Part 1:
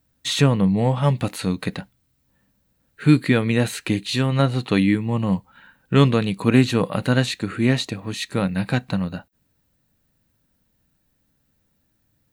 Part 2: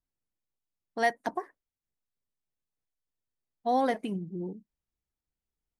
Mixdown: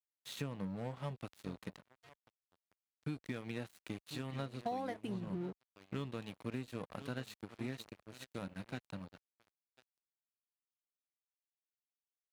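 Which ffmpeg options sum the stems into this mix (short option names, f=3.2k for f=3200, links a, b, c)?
-filter_complex "[0:a]volume=-18dB,asplit=3[a][b][c];[b]volume=-13.5dB[d];[1:a]adelay=1000,volume=2.5dB[e];[c]apad=whole_len=299761[f];[e][f]sidechaingate=range=-29dB:threshold=-57dB:ratio=16:detection=peak[g];[d]aecho=0:1:1043:1[h];[a][g][h]amix=inputs=3:normalize=0,aeval=exprs='sgn(val(0))*max(abs(val(0))-0.00596,0)':c=same,highpass=51,acompressor=threshold=-36dB:ratio=12"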